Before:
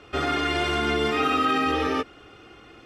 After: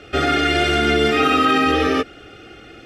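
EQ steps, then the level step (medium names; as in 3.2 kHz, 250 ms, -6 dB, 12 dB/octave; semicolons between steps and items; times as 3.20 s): Butterworth band-stop 990 Hz, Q 2.5; +7.5 dB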